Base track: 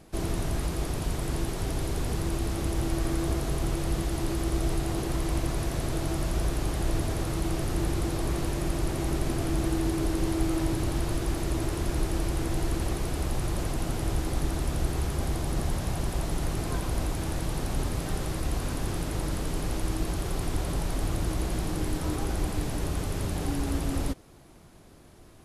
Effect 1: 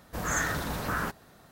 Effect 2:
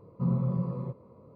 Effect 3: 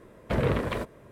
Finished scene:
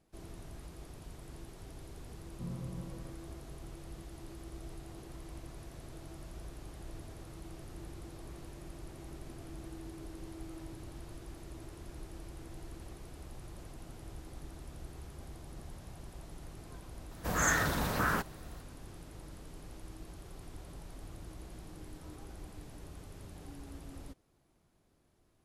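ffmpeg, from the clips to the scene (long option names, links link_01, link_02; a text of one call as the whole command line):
ffmpeg -i bed.wav -i cue0.wav -i cue1.wav -filter_complex "[0:a]volume=-19dB[link_01];[2:a]atrim=end=1.35,asetpts=PTS-STARTPTS,volume=-14.5dB,afade=type=in:duration=0.004:curve=hsin,afade=type=out:start_time=1.346:duration=0.004:curve=hsin,adelay=2190[link_02];[1:a]atrim=end=1.51,asetpts=PTS-STARTPTS,afade=type=in:duration=0.004:curve=hsin,afade=type=out:start_time=1.506:duration=0.004:curve=hsin,adelay=17110[link_03];[link_01][link_02][link_03]amix=inputs=3:normalize=0" out.wav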